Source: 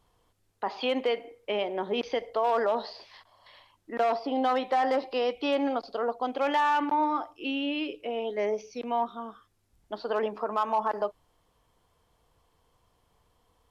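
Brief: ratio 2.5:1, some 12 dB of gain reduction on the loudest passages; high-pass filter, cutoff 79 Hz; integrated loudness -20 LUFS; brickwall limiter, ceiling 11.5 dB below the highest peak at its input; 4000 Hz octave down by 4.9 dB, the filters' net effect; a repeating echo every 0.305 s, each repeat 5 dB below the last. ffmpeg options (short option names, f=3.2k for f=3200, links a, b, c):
-af "highpass=79,equalizer=f=4k:t=o:g=-7.5,acompressor=threshold=-41dB:ratio=2.5,alimiter=level_in=12dB:limit=-24dB:level=0:latency=1,volume=-12dB,aecho=1:1:305|610|915|1220|1525|1830|2135:0.562|0.315|0.176|0.0988|0.0553|0.031|0.0173,volume=24dB"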